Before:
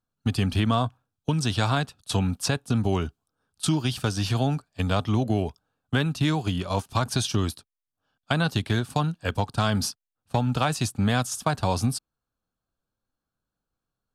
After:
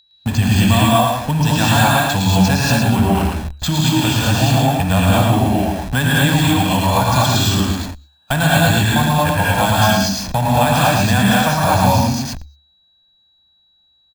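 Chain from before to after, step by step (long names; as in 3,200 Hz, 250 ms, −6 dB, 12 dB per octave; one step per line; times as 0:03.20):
low-shelf EQ 140 Hz −7.5 dB
bad sample-rate conversion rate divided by 4×, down filtered, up hold
steady tone 3,900 Hz −50 dBFS
repeating echo 110 ms, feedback 18%, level −5 dB
reverb whose tail is shaped and stops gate 260 ms rising, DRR −5.5 dB
in parallel at −10.5 dB: comparator with hysteresis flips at −41 dBFS
on the sum: parametric band 71 Hz +13.5 dB 0.25 octaves
notch filter 360 Hz, Q 12
comb filter 1.2 ms, depth 53%
every ending faded ahead of time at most 160 dB per second
level +3 dB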